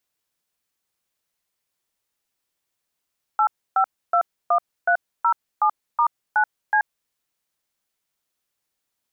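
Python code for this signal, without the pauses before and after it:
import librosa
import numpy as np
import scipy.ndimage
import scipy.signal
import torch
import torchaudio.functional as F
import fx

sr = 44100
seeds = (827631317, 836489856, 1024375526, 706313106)

y = fx.dtmf(sr, digits='8521307*9C', tone_ms=81, gap_ms=290, level_db=-17.5)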